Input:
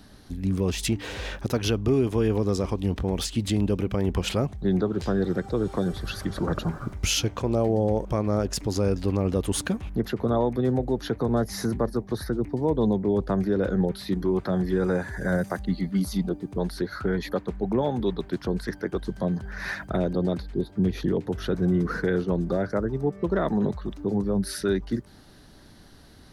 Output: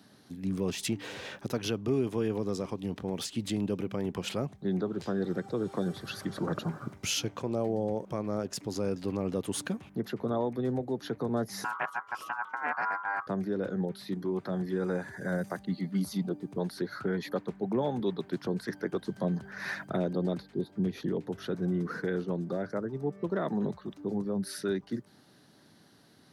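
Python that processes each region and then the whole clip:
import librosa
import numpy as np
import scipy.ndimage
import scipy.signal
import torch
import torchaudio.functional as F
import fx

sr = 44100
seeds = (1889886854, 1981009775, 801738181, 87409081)

y = fx.chain(x, sr, fx.ring_mod(carrier_hz=1200.0),
    fx.doppler_dist(depth_ms=0.24), at=(11.64, 13.27))
y = scipy.signal.sosfilt(scipy.signal.butter(4, 120.0, 'highpass', fs=sr, output='sos'), y)
y = fx.rider(y, sr, range_db=10, speed_s=2.0)
y = F.gain(torch.from_numpy(y), -6.5).numpy()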